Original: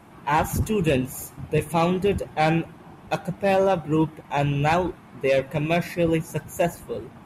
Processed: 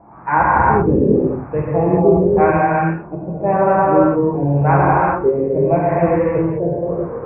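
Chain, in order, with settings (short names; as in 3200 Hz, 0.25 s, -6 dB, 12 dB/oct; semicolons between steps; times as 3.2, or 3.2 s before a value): elliptic low-pass 2400 Hz, stop band 40 dB; LFO low-pass sine 0.88 Hz 340–1500 Hz; non-linear reverb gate 0.43 s flat, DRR -6.5 dB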